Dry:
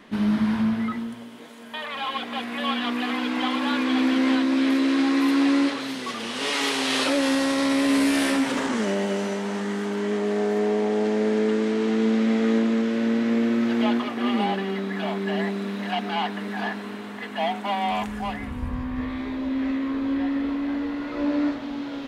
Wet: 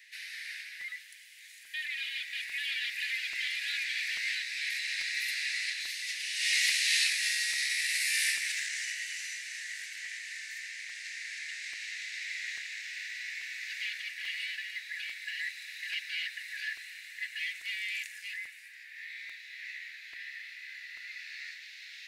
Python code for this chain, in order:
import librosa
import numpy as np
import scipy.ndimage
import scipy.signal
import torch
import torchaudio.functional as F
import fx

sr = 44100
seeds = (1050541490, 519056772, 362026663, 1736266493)

y = scipy.signal.sosfilt(scipy.signal.butter(12, 1800.0, 'highpass', fs=sr, output='sos'), x)
y = fx.peak_eq(y, sr, hz=3200.0, db=-11.0, octaves=0.28)
y = fx.buffer_crackle(y, sr, first_s=0.81, period_s=0.84, block=128, kind='repeat')
y = y * librosa.db_to_amplitude(2.0)